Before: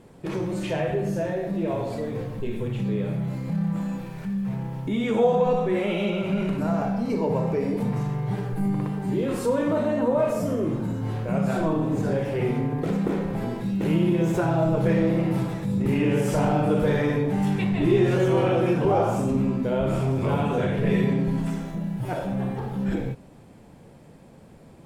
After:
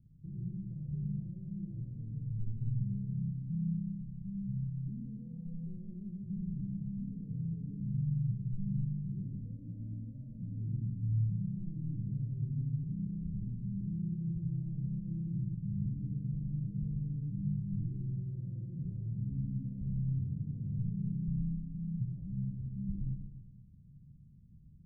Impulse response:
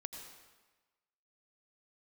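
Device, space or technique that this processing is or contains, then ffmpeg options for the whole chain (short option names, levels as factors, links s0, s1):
club heard from the street: -filter_complex "[0:a]alimiter=limit=0.112:level=0:latency=1,lowpass=f=150:w=0.5412,lowpass=f=150:w=1.3066[s0];[1:a]atrim=start_sample=2205[s1];[s0][s1]afir=irnorm=-1:irlink=0"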